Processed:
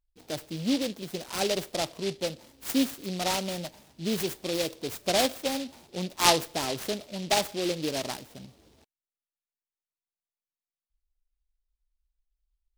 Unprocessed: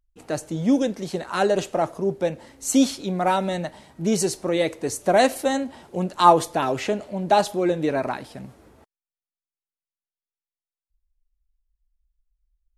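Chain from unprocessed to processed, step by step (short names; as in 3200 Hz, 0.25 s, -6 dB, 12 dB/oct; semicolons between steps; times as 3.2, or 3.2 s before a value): noise-modulated delay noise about 3600 Hz, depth 0.15 ms; gain -7.5 dB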